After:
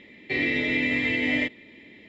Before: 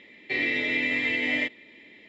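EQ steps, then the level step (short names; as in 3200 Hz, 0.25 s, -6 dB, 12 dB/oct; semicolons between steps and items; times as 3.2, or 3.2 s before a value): low shelf 260 Hz +12 dB; 0.0 dB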